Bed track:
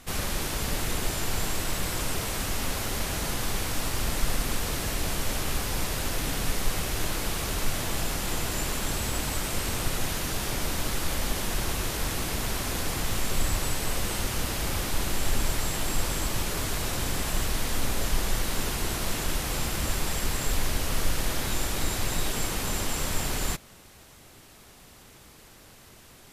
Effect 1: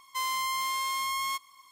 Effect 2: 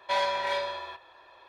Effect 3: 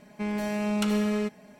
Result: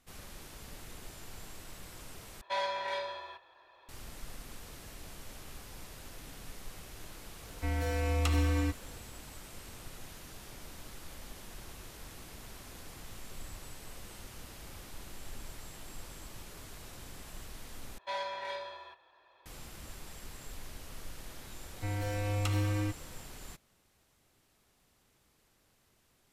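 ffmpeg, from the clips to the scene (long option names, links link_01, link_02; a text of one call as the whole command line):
ffmpeg -i bed.wav -i cue0.wav -i cue1.wav -i cue2.wav -filter_complex "[2:a]asplit=2[link_01][link_02];[3:a]asplit=2[link_03][link_04];[0:a]volume=-19dB[link_05];[link_03]afreqshift=-130[link_06];[link_04]afreqshift=-110[link_07];[link_05]asplit=3[link_08][link_09][link_10];[link_08]atrim=end=2.414[link_11];[link_01]atrim=end=1.48,asetpts=PTS-STARTPTS,volume=-6.5dB[link_12];[link_09]atrim=start=3.886:end=17.984[link_13];[link_02]atrim=end=1.48,asetpts=PTS-STARTPTS,volume=-10dB[link_14];[link_10]atrim=start=19.456[link_15];[link_06]atrim=end=1.59,asetpts=PTS-STARTPTS,volume=-2.5dB,afade=type=in:duration=0.004:curve=hsin,afade=type=out:start_time=1.586:duration=0.004:curve=hsin,adelay=7430[link_16];[link_07]atrim=end=1.59,asetpts=PTS-STARTPTS,volume=-5dB,afade=type=in:duration=0.004:curve=hsin,afade=type=out:start_time=1.586:duration=0.004:curve=hsin,adelay=21630[link_17];[link_11][link_12]acrossfade=duration=0.004:curve1=hsin:curve2=hsin[link_18];[link_18][link_13]acrossfade=duration=0.004:curve1=hsin:curve2=hsin[link_19];[link_19][link_14]acrossfade=duration=0.004:curve1=hsin:curve2=hsin[link_20];[link_20][link_15]acrossfade=duration=0.004:curve1=hsin:curve2=hsin[link_21];[link_21][link_16][link_17]amix=inputs=3:normalize=0" out.wav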